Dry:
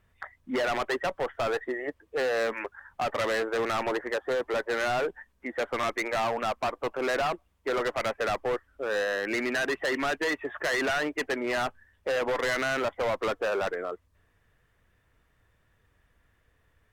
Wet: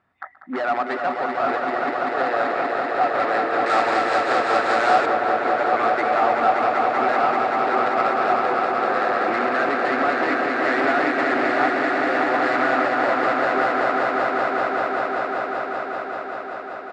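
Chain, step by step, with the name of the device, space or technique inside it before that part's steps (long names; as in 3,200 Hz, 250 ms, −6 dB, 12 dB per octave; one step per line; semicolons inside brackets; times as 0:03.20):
high-shelf EQ 5,200 Hz −8 dB
multi-tap delay 128/308 ms −19.5/−8.5 dB
echo that builds up and dies away 193 ms, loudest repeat 5, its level −5.5 dB
full-range speaker at full volume (highs frequency-modulated by the lows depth 0.24 ms; loudspeaker in its box 170–7,300 Hz, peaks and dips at 290 Hz +6 dB, 470 Hz −6 dB, 750 Hz +10 dB, 1,300 Hz +8 dB, 3,100 Hz −6 dB, 6,100 Hz −10 dB)
0:03.66–0:05.06: parametric band 8,900 Hz +13.5 dB 2.2 octaves
level +1 dB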